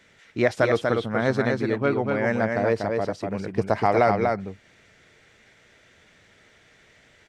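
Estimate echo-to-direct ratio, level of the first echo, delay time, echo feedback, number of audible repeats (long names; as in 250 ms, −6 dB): −4.0 dB, −4.0 dB, 242 ms, repeats not evenly spaced, 1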